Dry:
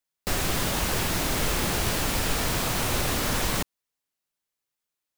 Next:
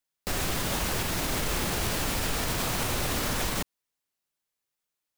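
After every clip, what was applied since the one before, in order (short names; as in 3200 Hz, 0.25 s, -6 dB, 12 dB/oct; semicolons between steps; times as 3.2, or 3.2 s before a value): limiter -19 dBFS, peak gain reduction 6.5 dB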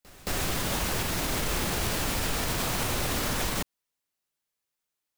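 pre-echo 0.221 s -21.5 dB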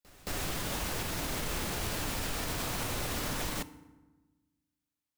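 FDN reverb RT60 1.2 s, low-frequency decay 1.4×, high-frequency decay 0.6×, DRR 14 dB; gain -6 dB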